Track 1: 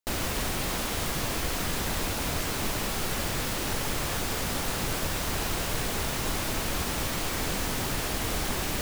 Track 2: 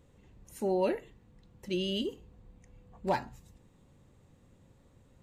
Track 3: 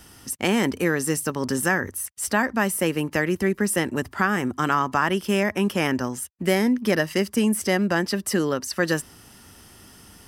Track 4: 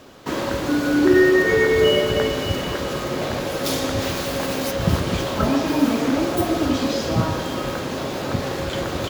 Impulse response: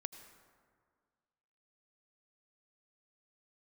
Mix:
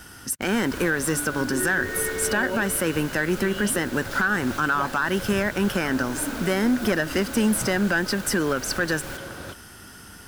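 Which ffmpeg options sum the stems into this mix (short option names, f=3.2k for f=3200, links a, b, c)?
-filter_complex "[0:a]adelay=350,volume=-7.5dB[a];[1:a]adelay=1700,volume=0.5dB[b];[2:a]asoftclip=type=tanh:threshold=-13.5dB,volume=3dB[c];[3:a]adelay=450,volume=-13.5dB[d];[a][b][c][d]amix=inputs=4:normalize=0,equalizer=f=1.5k:t=o:w=0.23:g=13,alimiter=limit=-13.5dB:level=0:latency=1:release=180"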